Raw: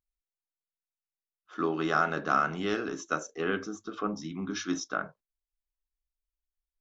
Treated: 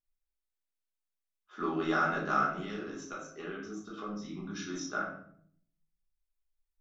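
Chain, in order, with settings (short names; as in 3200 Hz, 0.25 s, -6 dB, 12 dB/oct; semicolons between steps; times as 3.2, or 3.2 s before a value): 2.43–4.74 compressor, threshold -34 dBFS, peak gain reduction 10.5 dB; reverb RT60 0.60 s, pre-delay 5 ms, DRR -4.5 dB; gain -8 dB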